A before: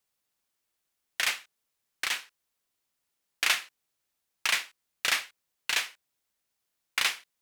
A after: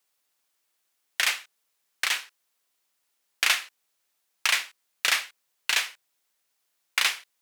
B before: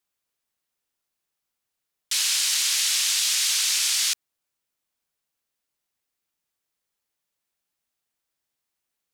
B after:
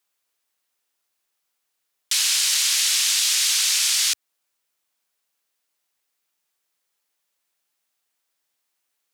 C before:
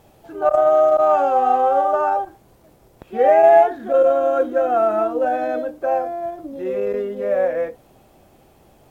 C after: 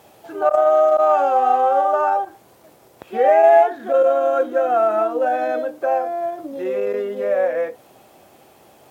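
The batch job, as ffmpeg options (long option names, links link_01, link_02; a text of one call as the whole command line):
ffmpeg -i in.wav -filter_complex "[0:a]highpass=frequency=82:width=0.5412,highpass=frequency=82:width=1.3066,equalizer=frequency=110:width_type=o:width=2.9:gain=-10.5,asplit=2[link_01][link_02];[link_02]acompressor=threshold=-29dB:ratio=6,volume=0dB[link_03];[link_01][link_03]amix=inputs=2:normalize=0" out.wav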